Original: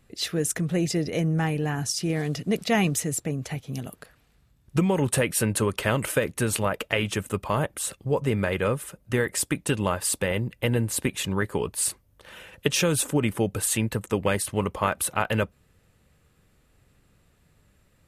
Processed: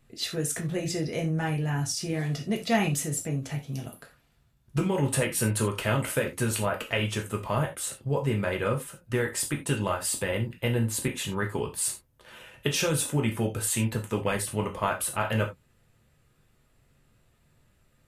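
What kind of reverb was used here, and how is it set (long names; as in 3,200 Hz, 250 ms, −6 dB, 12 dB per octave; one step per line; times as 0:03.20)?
reverb whose tail is shaped and stops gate 110 ms falling, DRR 1 dB
level −5 dB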